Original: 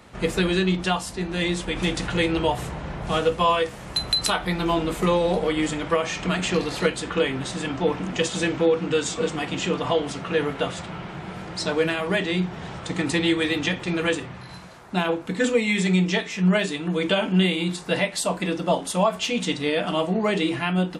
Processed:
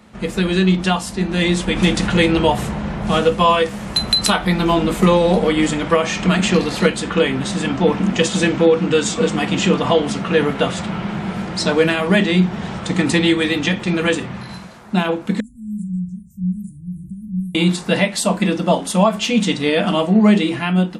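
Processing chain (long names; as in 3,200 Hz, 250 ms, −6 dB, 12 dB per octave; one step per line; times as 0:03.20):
0:15.40–0:17.55: inverse Chebyshev band-stop filter 470–4,200 Hz, stop band 70 dB
parametric band 210 Hz +14.5 dB 0.22 octaves
automatic gain control gain up to 12.5 dB
level −1 dB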